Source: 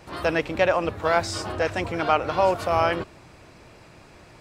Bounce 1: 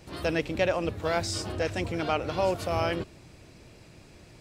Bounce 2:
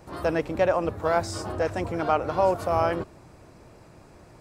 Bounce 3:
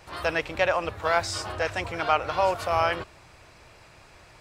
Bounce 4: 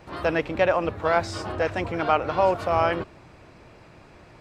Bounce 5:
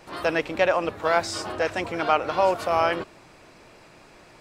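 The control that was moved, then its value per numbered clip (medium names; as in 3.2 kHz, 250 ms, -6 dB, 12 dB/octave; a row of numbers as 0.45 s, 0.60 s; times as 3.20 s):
peaking EQ, frequency: 1.1 kHz, 2.9 kHz, 240 Hz, 14 kHz, 77 Hz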